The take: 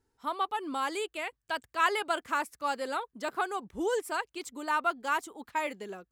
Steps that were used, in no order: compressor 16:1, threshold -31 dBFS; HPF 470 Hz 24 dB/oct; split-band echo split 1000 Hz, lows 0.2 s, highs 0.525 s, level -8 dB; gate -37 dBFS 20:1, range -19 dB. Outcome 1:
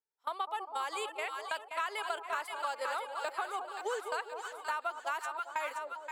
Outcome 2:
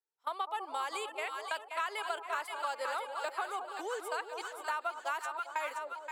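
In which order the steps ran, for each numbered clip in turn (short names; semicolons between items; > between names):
HPF > gate > split-band echo > compressor; gate > split-band echo > compressor > HPF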